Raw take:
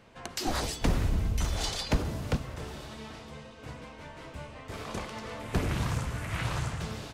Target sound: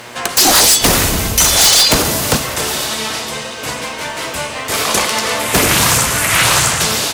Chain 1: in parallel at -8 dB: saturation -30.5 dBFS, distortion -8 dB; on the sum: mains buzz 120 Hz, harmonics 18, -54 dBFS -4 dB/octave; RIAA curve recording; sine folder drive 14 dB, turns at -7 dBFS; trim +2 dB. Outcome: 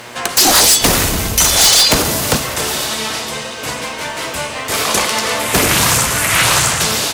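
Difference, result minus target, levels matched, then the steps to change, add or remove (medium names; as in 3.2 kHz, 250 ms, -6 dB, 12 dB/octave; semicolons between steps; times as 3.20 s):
saturation: distortion +12 dB
change: saturation -19 dBFS, distortion -20 dB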